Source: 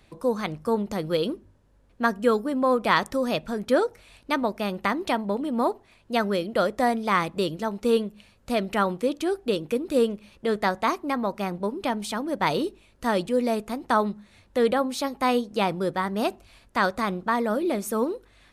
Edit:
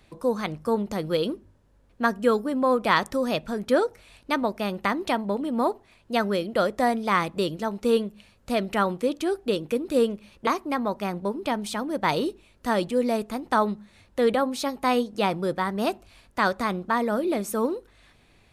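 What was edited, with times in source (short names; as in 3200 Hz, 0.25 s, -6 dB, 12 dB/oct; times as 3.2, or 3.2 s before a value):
10.47–10.85 cut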